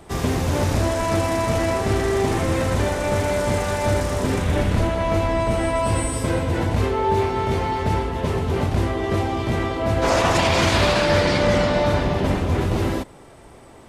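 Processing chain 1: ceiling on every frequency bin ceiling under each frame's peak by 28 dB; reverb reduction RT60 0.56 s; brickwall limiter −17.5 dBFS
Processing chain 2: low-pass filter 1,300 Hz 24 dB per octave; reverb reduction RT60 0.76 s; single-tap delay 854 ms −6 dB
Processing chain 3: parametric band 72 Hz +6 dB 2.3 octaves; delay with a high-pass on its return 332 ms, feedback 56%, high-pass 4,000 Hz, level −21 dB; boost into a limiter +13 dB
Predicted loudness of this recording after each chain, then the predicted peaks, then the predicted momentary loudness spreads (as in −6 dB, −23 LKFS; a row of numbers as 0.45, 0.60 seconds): −25.5, −23.0, −10.0 LKFS; −17.5, −8.0, −1.0 dBFS; 2, 4, 1 LU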